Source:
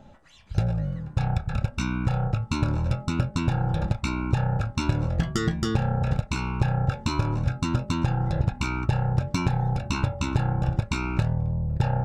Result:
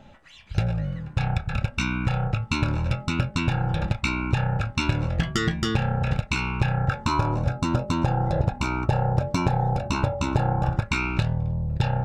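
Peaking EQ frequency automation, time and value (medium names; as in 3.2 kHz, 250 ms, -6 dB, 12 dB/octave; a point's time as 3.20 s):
peaking EQ +8.5 dB 1.4 oct
6.71 s 2.5 kHz
7.38 s 610 Hz
10.49 s 610 Hz
11.14 s 3.4 kHz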